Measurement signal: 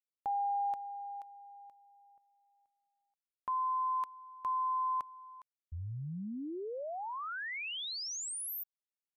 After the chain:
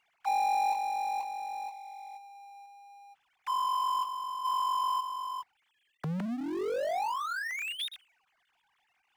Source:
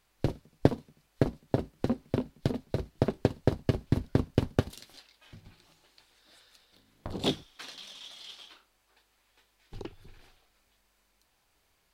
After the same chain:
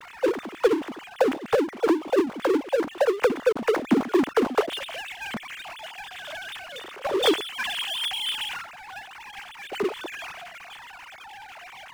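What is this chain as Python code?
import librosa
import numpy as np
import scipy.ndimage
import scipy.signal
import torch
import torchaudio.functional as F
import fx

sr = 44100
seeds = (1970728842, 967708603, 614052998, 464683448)

y = fx.sine_speech(x, sr)
y = fx.power_curve(y, sr, exponent=0.5)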